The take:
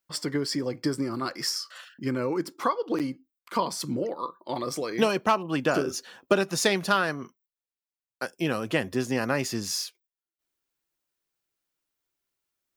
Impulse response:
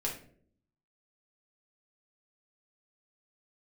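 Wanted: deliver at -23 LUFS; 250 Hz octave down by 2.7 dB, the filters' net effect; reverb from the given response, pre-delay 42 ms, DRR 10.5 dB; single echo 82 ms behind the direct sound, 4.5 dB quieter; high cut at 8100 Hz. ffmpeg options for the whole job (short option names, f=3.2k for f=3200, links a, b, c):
-filter_complex "[0:a]lowpass=8.1k,equalizer=f=250:t=o:g=-3.5,aecho=1:1:82:0.596,asplit=2[a][b];[1:a]atrim=start_sample=2205,adelay=42[c];[b][c]afir=irnorm=-1:irlink=0,volume=-14dB[d];[a][d]amix=inputs=2:normalize=0,volume=4.5dB"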